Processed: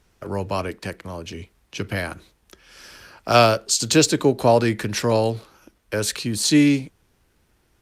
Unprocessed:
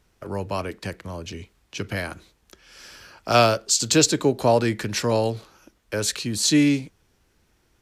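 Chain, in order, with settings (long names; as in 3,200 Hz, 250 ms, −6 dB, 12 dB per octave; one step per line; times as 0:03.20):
0:00.76–0:01.38: parametric band 83 Hz −3.5 dB 2.2 octaves
level +2.5 dB
Opus 48 kbit/s 48,000 Hz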